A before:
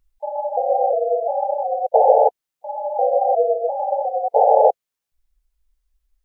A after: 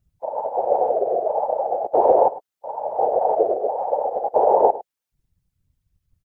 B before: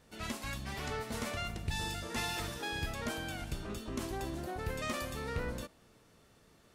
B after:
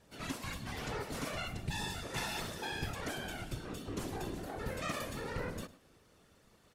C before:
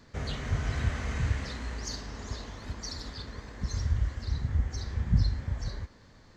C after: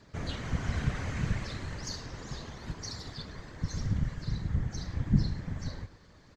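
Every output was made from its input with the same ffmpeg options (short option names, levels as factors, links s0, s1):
-filter_complex "[0:a]afftfilt=real='hypot(re,im)*cos(2*PI*random(0))':imag='hypot(re,im)*sin(2*PI*random(1))':win_size=512:overlap=0.75,asplit=2[s0][s1];[s1]adelay=105,volume=0.141,highshelf=f=4000:g=-2.36[s2];[s0][s2]amix=inputs=2:normalize=0,volume=1.68"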